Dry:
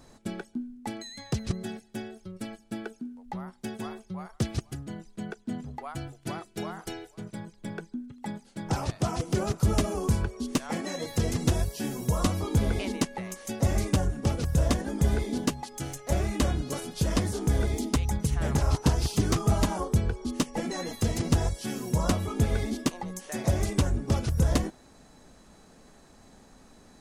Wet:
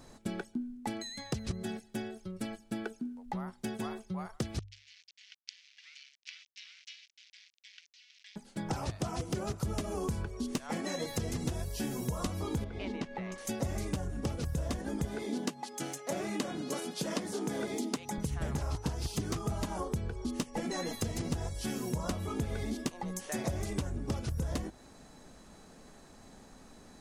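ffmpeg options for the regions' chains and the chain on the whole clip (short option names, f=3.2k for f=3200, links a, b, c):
-filter_complex "[0:a]asettb=1/sr,asplit=3[a][b][c];[a]atrim=end=4.594[d];[b]atrim=start=4.59:end=8.36,asetpts=PTS-STARTPTS,afade=t=in:d=0.004:c=qsin,afade=t=out:st=3.766:d=0.004:c=qsin,acrusher=bits=5:dc=4:mix=0:aa=0.000001,asuperpass=centerf=3600:order=8:qfactor=0.94[e];[c]atrim=start=8.356[f];[d][e]acrossfade=d=0.004:c1=hsin:c2=qsin[g];[g][f]acrossfade=d=0.004:c1=qsin:c2=hsin,asettb=1/sr,asplit=3[h][i][j];[h]atrim=end=12.644[k];[i]atrim=start=12.64:end=13.38,asetpts=PTS-STARTPTS,afade=t=in:d=0.004:c=qsin,afade=t=out:st=0.736:d=0.004:c=qsin,lowpass=3.7k,acompressor=threshold=-36dB:ratio=2:attack=3.2:release=140:knee=1:detection=peak[l];[j]atrim=start=13.376[m];[k][l]acrossfade=d=0.004:c1=hsin:c2=qsin[n];[n][m]acrossfade=d=0.004:c1=qsin:c2=hsin,asettb=1/sr,asplit=3[o][p][q];[o]atrim=end=15.054[r];[p]atrim=start=15.05:end=18.18,asetpts=PTS-STARTPTS,afade=t=in:d=0.004:c=qsin,afade=t=out:st=3.126:d=0.004:c=qsin,highpass=f=180:w=0.5412,highpass=f=180:w=1.3066,highshelf=f=12k:g=-6.5[s];[q]atrim=start=18.176[t];[r][s]acrossfade=d=0.004:c1=hsin:c2=qsin[u];[u][t]acrossfade=d=0.004:c1=qsin:c2=hsin,bandreject=f=50:t=h:w=6,bandreject=f=100:t=h:w=6,acompressor=threshold=-31dB:ratio=6"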